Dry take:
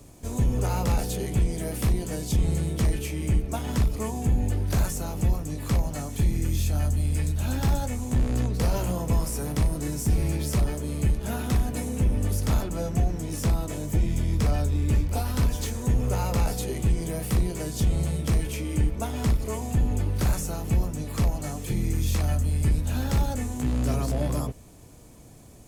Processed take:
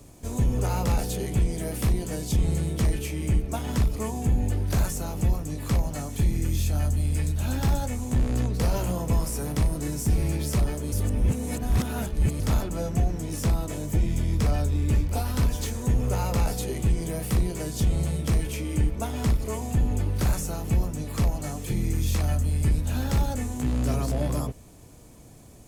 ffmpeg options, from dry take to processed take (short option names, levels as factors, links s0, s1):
-filter_complex "[0:a]asplit=3[s0][s1][s2];[s0]atrim=end=10.922[s3];[s1]atrim=start=10.918:end=12.402,asetpts=PTS-STARTPTS,areverse[s4];[s2]atrim=start=12.398[s5];[s3][s4]acrossfade=d=0.004:c1=hsin:c2=hsin[s6];[s6][s5]acrossfade=d=0.004:c1=hsin:c2=hsin"